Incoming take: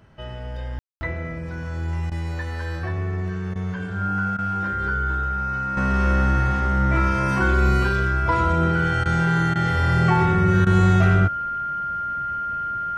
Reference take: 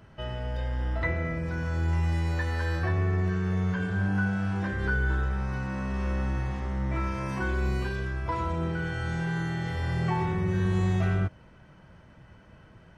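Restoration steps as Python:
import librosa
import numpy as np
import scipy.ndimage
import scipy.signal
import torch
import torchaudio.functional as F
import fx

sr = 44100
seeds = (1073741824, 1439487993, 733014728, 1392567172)

y = fx.notch(x, sr, hz=1400.0, q=30.0)
y = fx.fix_ambience(y, sr, seeds[0], print_start_s=3.44, print_end_s=3.94, start_s=0.79, end_s=1.01)
y = fx.fix_interpolate(y, sr, at_s=(2.1, 3.54, 4.37, 9.04, 9.54, 10.65), length_ms=14.0)
y = fx.gain(y, sr, db=fx.steps((0.0, 0.0), (5.77, -9.0)))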